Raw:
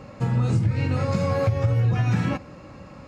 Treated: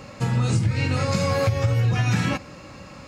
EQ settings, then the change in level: high shelf 2100 Hz +12 dB; 0.0 dB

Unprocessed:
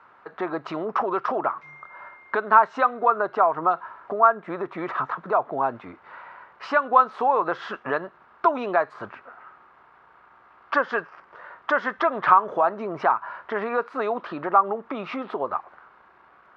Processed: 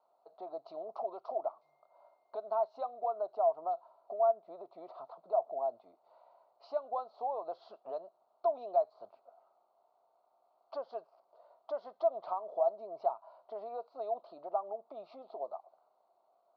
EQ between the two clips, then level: double band-pass 1700 Hz, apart 2.7 oct; high shelf 2100 Hz -8.5 dB; bell 2800 Hz -2.5 dB; -3.0 dB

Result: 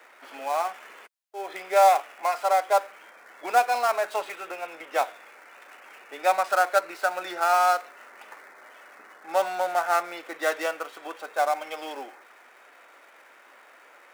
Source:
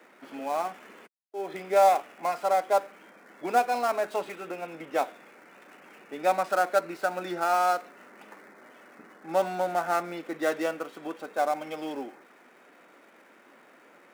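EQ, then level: HPF 660 Hz 12 dB/oct; +5.0 dB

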